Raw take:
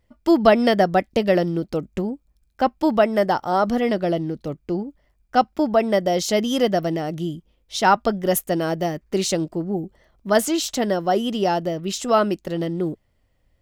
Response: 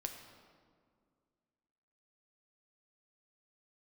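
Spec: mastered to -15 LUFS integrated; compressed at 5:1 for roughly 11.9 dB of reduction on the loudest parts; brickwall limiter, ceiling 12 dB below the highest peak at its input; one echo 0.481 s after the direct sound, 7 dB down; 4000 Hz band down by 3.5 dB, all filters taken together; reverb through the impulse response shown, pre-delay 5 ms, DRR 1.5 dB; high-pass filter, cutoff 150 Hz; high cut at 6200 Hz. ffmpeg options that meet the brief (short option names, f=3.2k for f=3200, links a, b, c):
-filter_complex "[0:a]highpass=150,lowpass=6.2k,equalizer=f=4k:t=o:g=-4,acompressor=threshold=-24dB:ratio=5,alimiter=level_in=1.5dB:limit=-24dB:level=0:latency=1,volume=-1.5dB,aecho=1:1:481:0.447,asplit=2[a][b];[1:a]atrim=start_sample=2205,adelay=5[c];[b][c]afir=irnorm=-1:irlink=0,volume=0dB[d];[a][d]amix=inputs=2:normalize=0,volume=16dB"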